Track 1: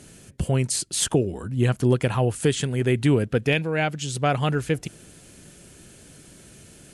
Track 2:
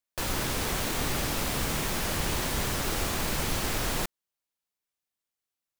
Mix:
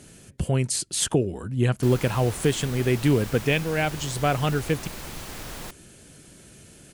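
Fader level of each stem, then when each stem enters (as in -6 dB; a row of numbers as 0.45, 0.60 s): -1.0, -8.0 dB; 0.00, 1.65 s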